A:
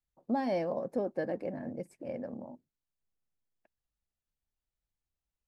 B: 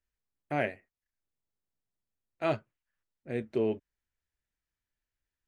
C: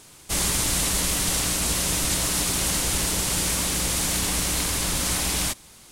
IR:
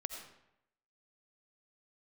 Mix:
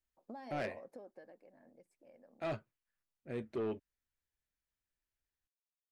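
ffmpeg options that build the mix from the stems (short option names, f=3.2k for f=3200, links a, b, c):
-filter_complex "[0:a]highpass=f=560:p=1,acompressor=threshold=-40dB:ratio=10,volume=-5dB,afade=t=out:st=0.75:d=0.67:silence=0.251189[a];[1:a]asoftclip=type=tanh:threshold=-27dB,volume=-4.5dB[b];[a][b]amix=inputs=2:normalize=0"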